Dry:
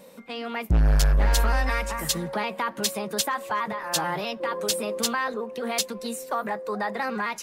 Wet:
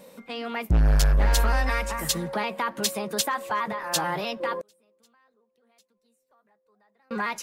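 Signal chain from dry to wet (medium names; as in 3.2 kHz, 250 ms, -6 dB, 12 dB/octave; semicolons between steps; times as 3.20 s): 4.61–7.11 s: inverted gate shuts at -32 dBFS, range -37 dB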